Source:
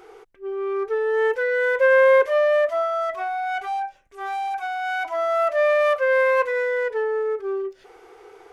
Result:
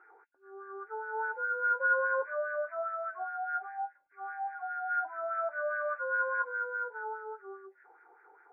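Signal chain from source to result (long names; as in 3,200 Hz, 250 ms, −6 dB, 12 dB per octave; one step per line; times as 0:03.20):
hearing-aid frequency compression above 1,400 Hz 4 to 1
LFO wah 4.9 Hz 750–1,700 Hz, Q 2.7
hollow resonant body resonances 300/880/1,400 Hz, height 10 dB, ringing for 45 ms
level −8.5 dB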